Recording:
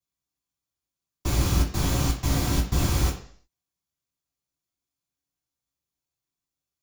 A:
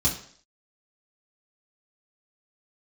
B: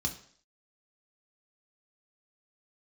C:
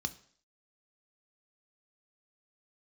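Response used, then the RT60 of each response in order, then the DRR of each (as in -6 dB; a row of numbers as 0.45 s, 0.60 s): A; 0.55 s, 0.55 s, 0.55 s; -5.5 dB, 2.0 dB, 9.0 dB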